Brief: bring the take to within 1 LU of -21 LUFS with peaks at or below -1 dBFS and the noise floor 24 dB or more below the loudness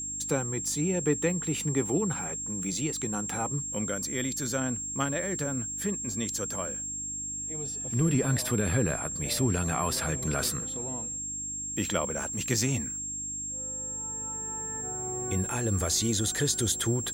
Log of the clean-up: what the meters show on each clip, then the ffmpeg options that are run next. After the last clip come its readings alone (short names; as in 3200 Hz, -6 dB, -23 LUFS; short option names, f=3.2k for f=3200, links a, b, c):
hum 50 Hz; harmonics up to 300 Hz; hum level -48 dBFS; steady tone 7500 Hz; tone level -33 dBFS; loudness -29.0 LUFS; peak -12.5 dBFS; loudness target -21.0 LUFS
-> -af "bandreject=f=50:t=h:w=4,bandreject=f=100:t=h:w=4,bandreject=f=150:t=h:w=4,bandreject=f=200:t=h:w=4,bandreject=f=250:t=h:w=4,bandreject=f=300:t=h:w=4"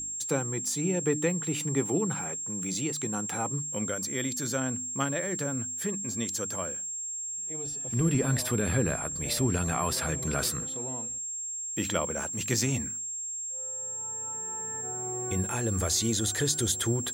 hum none; steady tone 7500 Hz; tone level -33 dBFS
-> -af "bandreject=f=7.5k:w=30"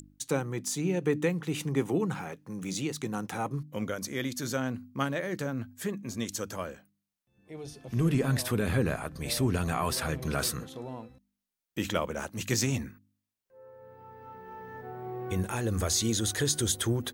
steady tone none; loudness -31.0 LUFS; peak -12.5 dBFS; loudness target -21.0 LUFS
-> -af "volume=10dB"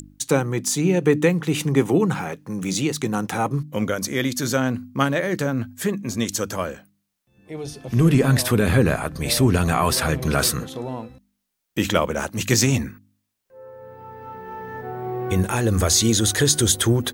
loudness -21.0 LUFS; peak -2.5 dBFS; noise floor -76 dBFS